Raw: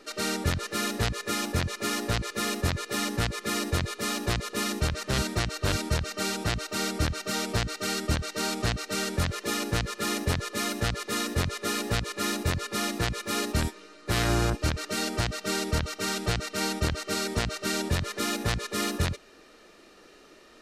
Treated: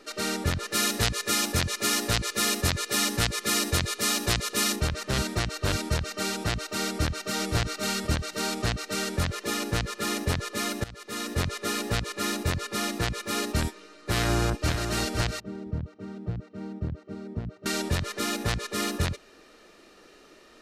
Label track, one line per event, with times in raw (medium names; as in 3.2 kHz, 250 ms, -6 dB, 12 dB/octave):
0.720000	4.760000	treble shelf 2.6 kHz +8.5 dB
6.880000	7.540000	echo throw 520 ms, feedback 15%, level -4.5 dB
10.840000	11.420000	fade in, from -20 dB
14.160000	14.820000	echo throw 510 ms, feedback 10%, level -6.5 dB
15.400000	17.660000	band-pass filter 140 Hz, Q 0.93